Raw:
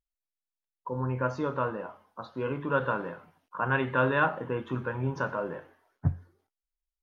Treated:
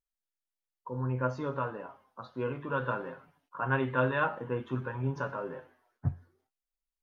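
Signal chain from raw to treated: flange 0.58 Hz, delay 6.9 ms, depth 1.7 ms, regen +42%

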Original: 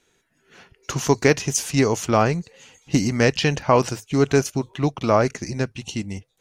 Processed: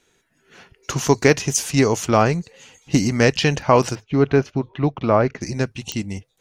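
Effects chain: 3.95–5.41 s: distance through air 280 m; clicks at 5.92 s, -11 dBFS; trim +2 dB

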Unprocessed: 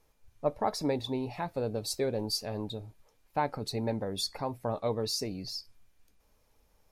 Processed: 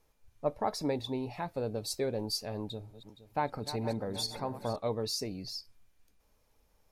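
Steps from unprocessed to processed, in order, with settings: 2.63–4.76 s: backward echo that repeats 234 ms, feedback 65%, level -12 dB; trim -2 dB

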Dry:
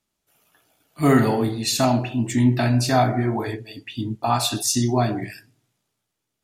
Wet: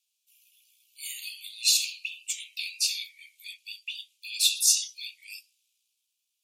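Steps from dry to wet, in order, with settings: steep high-pass 2.4 kHz 96 dB/octave; trim +2 dB

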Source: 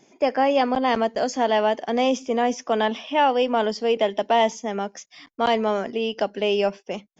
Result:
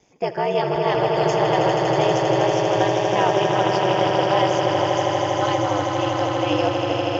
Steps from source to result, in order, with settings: echo with a slow build-up 80 ms, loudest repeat 8, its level -7 dB; ring modulator 100 Hz

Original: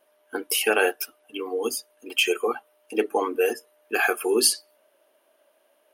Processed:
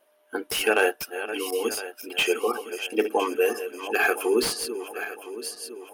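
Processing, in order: backward echo that repeats 505 ms, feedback 64%, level -11 dB; slew-rate limiter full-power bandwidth 330 Hz

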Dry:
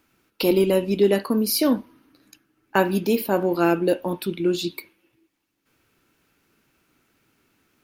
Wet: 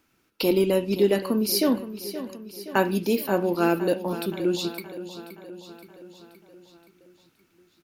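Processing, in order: peaking EQ 5.6 kHz +2.5 dB; on a send: feedback delay 522 ms, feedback 58%, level -13 dB; on the sum: trim -2.5 dB

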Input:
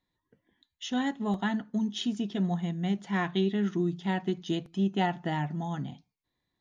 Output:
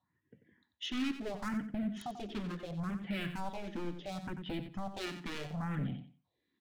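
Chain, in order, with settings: self-modulated delay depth 0.071 ms; high-pass 86 Hz 24 dB/octave; spectral replace 3.54–4.30 s, 500–1600 Hz; low-pass 2.7 kHz 12 dB/octave; compression 2:1, threshold -37 dBFS, peak gain reduction 8.5 dB; wavefolder -34.5 dBFS; phase shifter stages 4, 0.72 Hz, lowest notch 110–1100 Hz; feedback delay 91 ms, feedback 20%, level -10 dB; trim +5 dB

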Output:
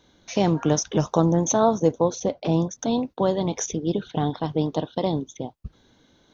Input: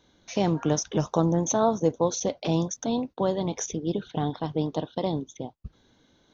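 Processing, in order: 2.02–2.79 s: treble shelf 2 kHz -8.5 dB; trim +3.5 dB

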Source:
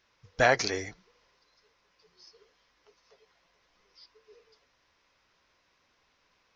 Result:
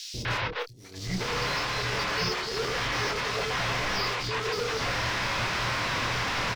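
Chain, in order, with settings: jump at every zero crossing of -31.5 dBFS; low-pass 5.5 kHz 24 dB/octave; peaking EQ 120 Hz +13.5 dB 0.24 oct; compressor with a negative ratio -37 dBFS, ratio -0.5; hysteresis with a dead band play -47 dBFS; doubling 27 ms -8 dB; three bands offset in time highs, lows, mids 140/250 ms, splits 420/4100 Hz; trim +7 dB

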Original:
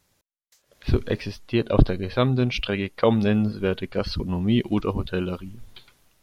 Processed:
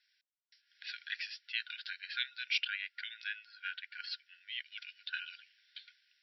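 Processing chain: FFT band-pass 1.4–5.7 kHz; 2.63–4.66 s: tilt EQ -2.5 dB/octave; trim -2.5 dB

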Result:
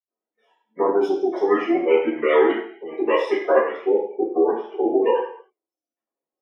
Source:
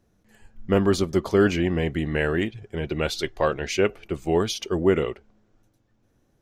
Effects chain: comb filter that takes the minimum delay 0.35 ms; high-pass 280 Hz 24 dB/octave; reverb removal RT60 0.9 s; 3.68–4.97 s: low-pass 1.2 kHz 12 dB/octave; spectral gate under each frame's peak -20 dB strong; spectral noise reduction 21 dB; level held to a coarse grid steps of 15 dB; reverberation RT60 0.60 s, pre-delay 76 ms, DRR -60 dB; trim +8 dB

